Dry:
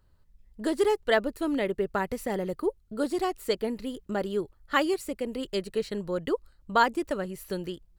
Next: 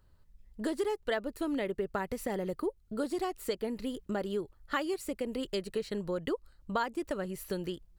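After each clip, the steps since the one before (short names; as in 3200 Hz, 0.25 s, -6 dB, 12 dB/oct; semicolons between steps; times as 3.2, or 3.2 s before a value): compressor 3:1, threshold -31 dBFS, peak gain reduction 11.5 dB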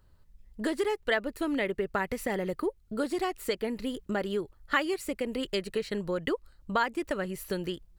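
dynamic EQ 2100 Hz, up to +7 dB, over -52 dBFS, Q 1.2; gain +2.5 dB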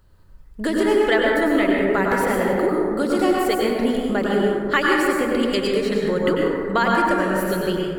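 plate-style reverb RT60 2.2 s, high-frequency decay 0.3×, pre-delay 85 ms, DRR -3 dB; gain +6.5 dB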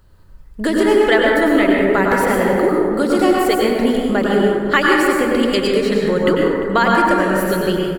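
echo 0.348 s -18 dB; gain +4.5 dB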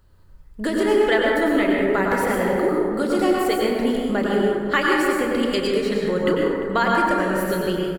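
doubler 33 ms -12 dB; gain -5.5 dB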